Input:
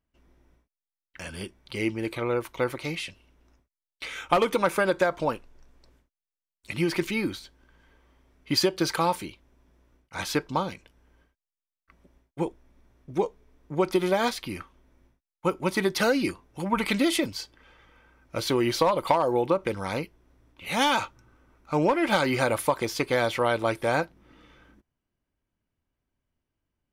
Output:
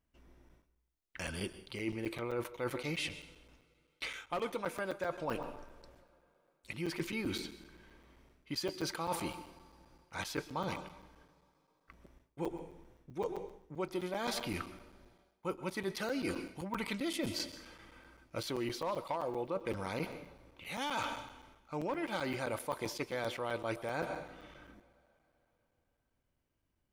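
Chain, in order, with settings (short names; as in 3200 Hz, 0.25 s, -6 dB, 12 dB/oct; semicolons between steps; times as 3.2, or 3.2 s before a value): reverb, pre-delay 0.113 s, DRR 15.5 dB; reverse; compressor 8:1, threshold -34 dBFS, peak gain reduction 18 dB; reverse; crackling interface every 0.13 s, samples 256, zero, from 0.49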